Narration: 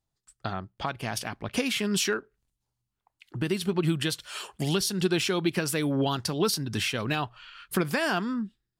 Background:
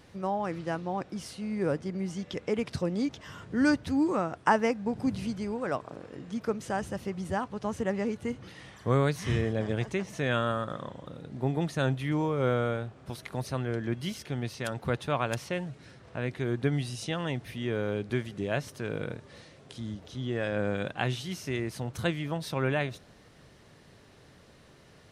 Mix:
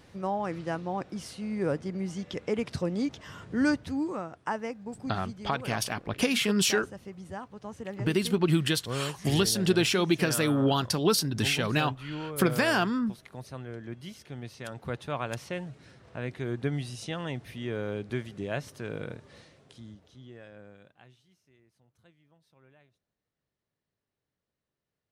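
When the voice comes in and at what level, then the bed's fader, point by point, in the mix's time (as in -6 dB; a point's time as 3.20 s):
4.65 s, +1.5 dB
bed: 3.58 s 0 dB
4.38 s -8.5 dB
14.09 s -8.5 dB
15.50 s -2.5 dB
19.39 s -2.5 dB
21.45 s -32.5 dB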